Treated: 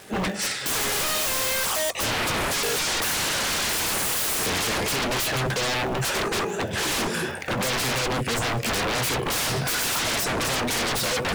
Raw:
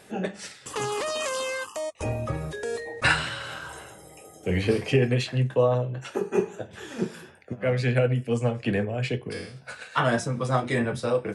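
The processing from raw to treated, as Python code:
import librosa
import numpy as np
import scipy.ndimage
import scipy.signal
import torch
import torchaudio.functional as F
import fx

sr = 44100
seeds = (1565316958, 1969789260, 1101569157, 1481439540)

y = fx.recorder_agc(x, sr, target_db=-4.5, rise_db_per_s=24.0, max_gain_db=30)
y = fx.low_shelf(y, sr, hz=190.0, db=-3.0)
y = np.clip(y, -10.0 ** (-10.5 / 20.0), 10.0 ** (-10.5 / 20.0))
y = fx.dmg_crackle(y, sr, seeds[0], per_s=510.0, level_db=-40.0)
y = 10.0 ** (-25.0 / 20.0) * (np.abs((y / 10.0 ** (-25.0 / 20.0) + 3.0) % 4.0 - 2.0) - 1.0)
y = F.gain(torch.from_numpy(y), 4.5).numpy()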